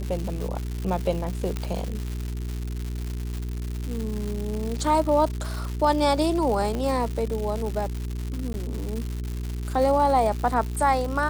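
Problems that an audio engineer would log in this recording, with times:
crackle 270/s -29 dBFS
hum 60 Hz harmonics 7 -30 dBFS
1.57 pop -15 dBFS
6.75 pop -18 dBFS
8.53–8.54 gap 11 ms

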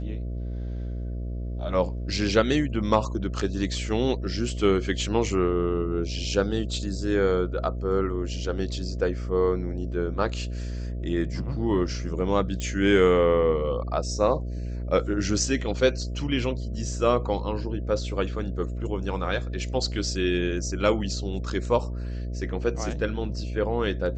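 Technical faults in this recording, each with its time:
buzz 60 Hz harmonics 11 -31 dBFS
12.6 pop -18 dBFS

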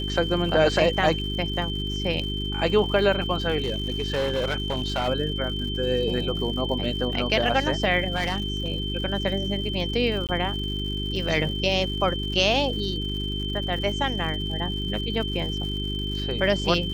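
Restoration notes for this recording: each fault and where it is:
crackle 150/s -35 dBFS
hum 50 Hz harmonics 8 -30 dBFS
tone 3100 Hz -31 dBFS
3.58–5.09 clipped -21 dBFS
8.15–8.7 clipped -20.5 dBFS
10.27–10.29 gap 18 ms

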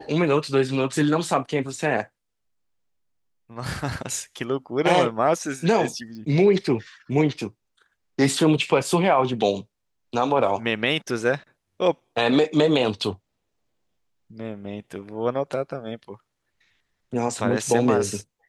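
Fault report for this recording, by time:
6.15 pop -30 dBFS

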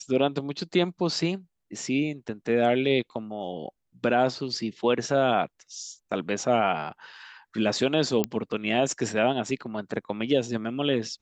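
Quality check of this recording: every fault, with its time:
8.24 pop -10 dBFS

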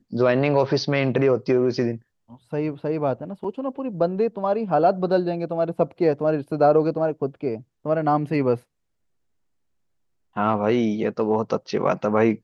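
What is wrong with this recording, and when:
3.44 gap 4.3 ms

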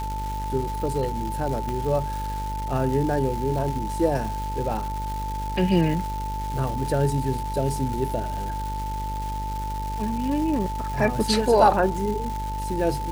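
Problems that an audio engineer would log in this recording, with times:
buzz 50 Hz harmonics 14 -31 dBFS
crackle 590/s -31 dBFS
tone 880 Hz -30 dBFS
1.69 pop -17 dBFS

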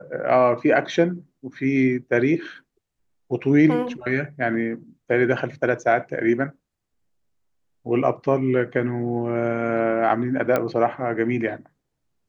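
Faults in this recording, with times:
10.56 pop -9 dBFS

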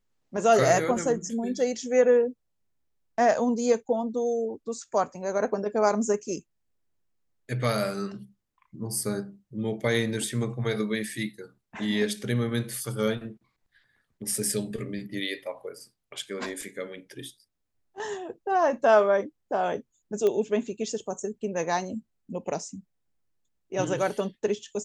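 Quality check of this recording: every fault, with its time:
20.27 pop -15 dBFS

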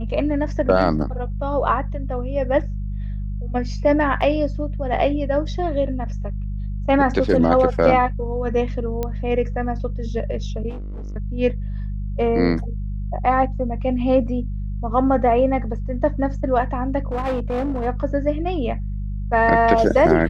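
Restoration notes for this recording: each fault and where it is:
hum 50 Hz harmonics 4 -26 dBFS
4.21 gap 3.8 ms
9.03 pop -12 dBFS
10.69–11.16 clipped -28 dBFS
17.12–17.87 clipped -19 dBFS

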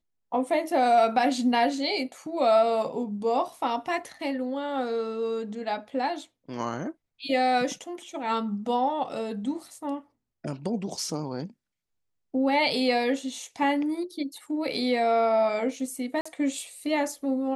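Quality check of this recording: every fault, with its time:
16.21–16.25 gap 45 ms

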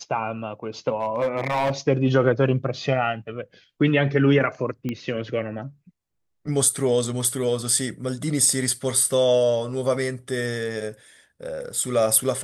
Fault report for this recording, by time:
1–1.72 clipped -18.5 dBFS
4.89 pop -16 dBFS

